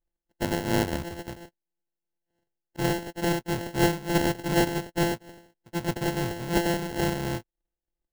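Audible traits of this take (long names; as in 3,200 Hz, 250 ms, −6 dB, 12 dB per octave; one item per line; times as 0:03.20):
a buzz of ramps at a fixed pitch in blocks of 128 samples
tremolo triangle 2.9 Hz, depth 50%
aliases and images of a low sample rate 1,200 Hz, jitter 0%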